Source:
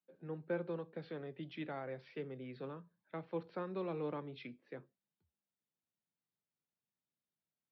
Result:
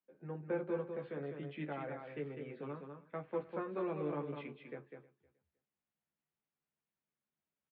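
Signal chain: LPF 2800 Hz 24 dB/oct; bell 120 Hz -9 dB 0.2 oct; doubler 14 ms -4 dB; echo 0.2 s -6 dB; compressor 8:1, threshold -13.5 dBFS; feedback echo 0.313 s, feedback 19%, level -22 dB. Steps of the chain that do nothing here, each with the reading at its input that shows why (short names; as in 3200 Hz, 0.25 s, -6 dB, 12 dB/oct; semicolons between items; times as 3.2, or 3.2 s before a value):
compressor, threshold -13.5 dBFS: input peak -26.0 dBFS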